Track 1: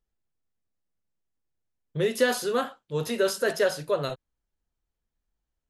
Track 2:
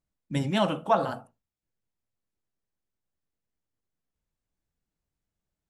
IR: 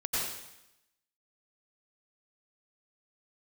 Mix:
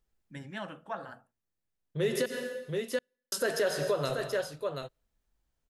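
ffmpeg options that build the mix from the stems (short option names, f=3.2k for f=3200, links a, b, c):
-filter_complex "[0:a]volume=2.5dB,asplit=3[a][b][c];[a]atrim=end=2.26,asetpts=PTS-STARTPTS,afade=t=out:st=2.256:d=0.004:c=hsin[d];[b]atrim=start=2.26:end=3.32,asetpts=PTS-STARTPTS,volume=0[e];[c]atrim=start=3.32,asetpts=PTS-STARTPTS,afade=t=in:d=0.004:c=hsin[f];[d][e][f]concat=n=3:v=0:a=1,asplit=3[g][h][i];[h]volume=-15.5dB[j];[i]volume=-10.5dB[k];[1:a]equalizer=f=1.7k:t=o:w=0.51:g=14,volume=-16.5dB,asplit=2[l][m];[m]apad=whole_len=251024[n];[g][n]sidechaincompress=threshold=-53dB:ratio=8:attack=16:release=1310[o];[2:a]atrim=start_sample=2205[p];[j][p]afir=irnorm=-1:irlink=0[q];[k]aecho=0:1:730:1[r];[o][l][q][r]amix=inputs=4:normalize=0,alimiter=limit=-19.5dB:level=0:latency=1:release=231"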